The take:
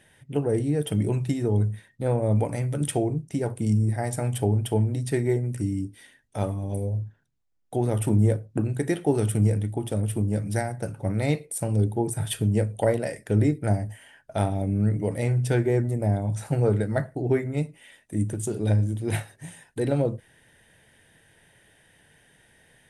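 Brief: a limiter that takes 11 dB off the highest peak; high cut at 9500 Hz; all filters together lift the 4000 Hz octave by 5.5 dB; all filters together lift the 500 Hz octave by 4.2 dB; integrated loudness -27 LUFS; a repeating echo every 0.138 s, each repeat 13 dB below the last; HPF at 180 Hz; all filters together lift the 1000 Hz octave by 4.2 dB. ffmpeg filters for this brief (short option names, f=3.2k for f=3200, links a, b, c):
-af "highpass=180,lowpass=9.5k,equalizer=f=500:t=o:g=4.5,equalizer=f=1k:t=o:g=3.5,equalizer=f=4k:t=o:g=7,alimiter=limit=-17.5dB:level=0:latency=1,aecho=1:1:138|276|414:0.224|0.0493|0.0108,volume=2dB"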